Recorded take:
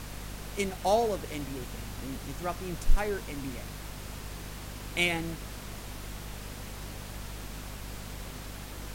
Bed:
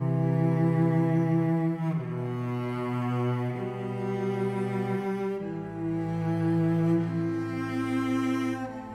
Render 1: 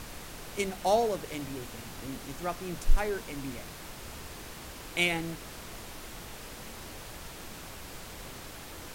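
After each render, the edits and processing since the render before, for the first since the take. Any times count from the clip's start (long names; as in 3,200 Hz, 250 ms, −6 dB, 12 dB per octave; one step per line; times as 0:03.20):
mains-hum notches 50/100/150/200/250 Hz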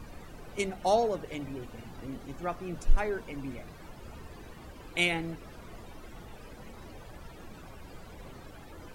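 broadband denoise 15 dB, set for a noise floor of −45 dBFS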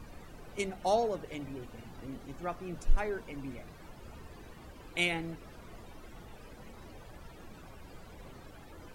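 level −3 dB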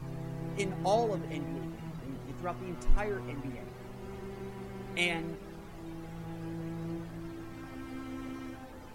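mix in bed −14.5 dB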